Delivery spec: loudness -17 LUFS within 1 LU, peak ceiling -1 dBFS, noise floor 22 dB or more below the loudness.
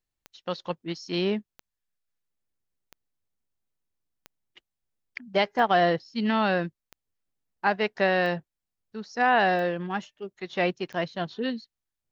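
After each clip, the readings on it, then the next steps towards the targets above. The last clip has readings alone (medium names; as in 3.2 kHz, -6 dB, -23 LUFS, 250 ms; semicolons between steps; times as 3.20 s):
clicks found 9; loudness -26.5 LUFS; peak level -9.5 dBFS; loudness target -17.0 LUFS
-> de-click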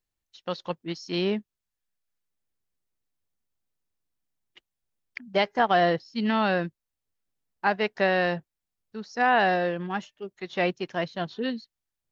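clicks found 0; loudness -26.5 LUFS; peak level -9.5 dBFS; loudness target -17.0 LUFS
-> trim +9.5 dB; peak limiter -1 dBFS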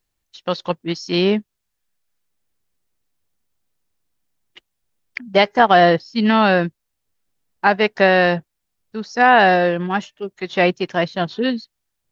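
loudness -17.0 LUFS; peak level -1.0 dBFS; noise floor -77 dBFS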